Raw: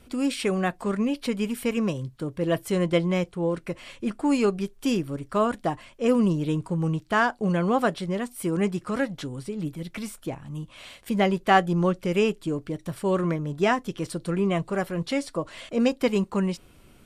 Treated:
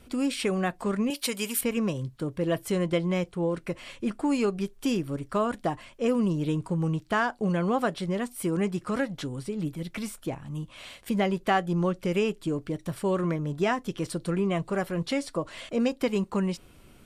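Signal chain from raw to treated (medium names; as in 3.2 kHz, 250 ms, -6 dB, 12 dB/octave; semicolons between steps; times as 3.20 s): 1.10–1.61 s: RIAA curve recording; compression 2:1, threshold -24 dBFS, peak gain reduction 6.5 dB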